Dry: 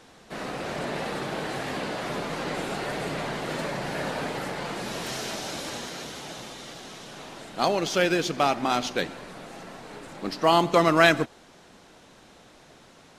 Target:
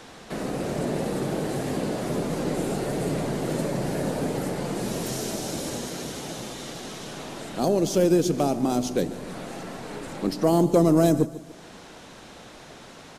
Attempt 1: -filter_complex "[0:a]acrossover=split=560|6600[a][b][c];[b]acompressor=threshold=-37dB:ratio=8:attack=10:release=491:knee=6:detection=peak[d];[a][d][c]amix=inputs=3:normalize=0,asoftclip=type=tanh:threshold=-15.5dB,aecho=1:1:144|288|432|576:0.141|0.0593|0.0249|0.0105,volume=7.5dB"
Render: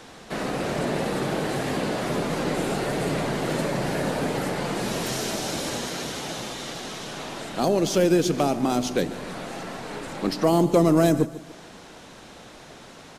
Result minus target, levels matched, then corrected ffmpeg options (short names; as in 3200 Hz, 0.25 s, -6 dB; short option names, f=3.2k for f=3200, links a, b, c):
compressor: peak gain reduction -7.5 dB
-filter_complex "[0:a]acrossover=split=560|6600[a][b][c];[b]acompressor=threshold=-45.5dB:ratio=8:attack=10:release=491:knee=6:detection=peak[d];[a][d][c]amix=inputs=3:normalize=0,asoftclip=type=tanh:threshold=-15.5dB,aecho=1:1:144|288|432|576:0.141|0.0593|0.0249|0.0105,volume=7.5dB"